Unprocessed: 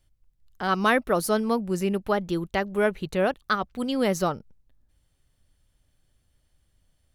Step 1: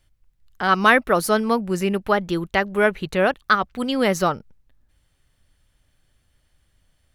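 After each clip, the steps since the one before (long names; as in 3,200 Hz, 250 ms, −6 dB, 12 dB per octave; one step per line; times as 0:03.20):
parametric band 1,800 Hz +5.5 dB 2 octaves
level +3 dB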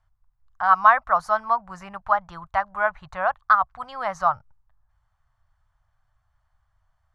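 drawn EQ curve 120 Hz 0 dB, 260 Hz −25 dB, 430 Hz −25 dB, 670 Hz +4 dB, 1,100 Hz +10 dB, 2,700 Hz −13 dB, 6,700 Hz −10 dB, 14,000 Hz −29 dB
level −4.5 dB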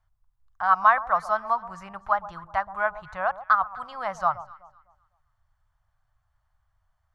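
delay that swaps between a low-pass and a high-pass 126 ms, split 1,100 Hz, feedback 51%, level −14 dB
level −3 dB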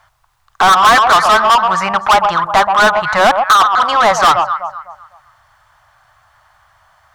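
mid-hump overdrive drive 34 dB, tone 4,900 Hz, clips at −4 dBFS
level +3 dB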